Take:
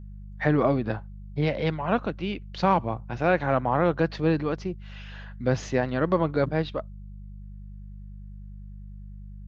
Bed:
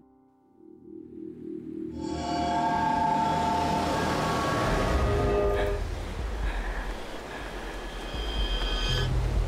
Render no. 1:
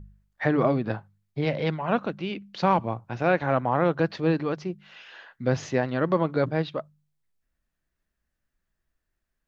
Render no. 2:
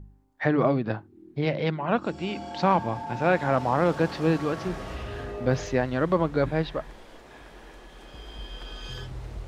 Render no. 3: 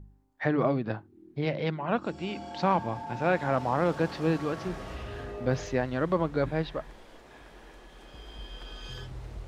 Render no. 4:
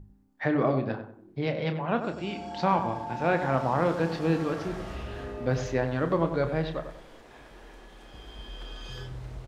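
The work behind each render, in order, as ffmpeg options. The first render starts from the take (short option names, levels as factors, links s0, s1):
-af "bandreject=f=50:t=h:w=4,bandreject=f=100:t=h:w=4,bandreject=f=150:t=h:w=4,bandreject=f=200:t=h:w=4"
-filter_complex "[1:a]volume=0.299[s0];[0:a][s0]amix=inputs=2:normalize=0"
-af "volume=0.668"
-filter_complex "[0:a]asplit=2[s0][s1];[s1]adelay=30,volume=0.335[s2];[s0][s2]amix=inputs=2:normalize=0,asplit=2[s3][s4];[s4]adelay=95,lowpass=f=1600:p=1,volume=0.398,asplit=2[s5][s6];[s6]adelay=95,lowpass=f=1600:p=1,volume=0.37,asplit=2[s7][s8];[s8]adelay=95,lowpass=f=1600:p=1,volume=0.37,asplit=2[s9][s10];[s10]adelay=95,lowpass=f=1600:p=1,volume=0.37[s11];[s3][s5][s7][s9][s11]amix=inputs=5:normalize=0"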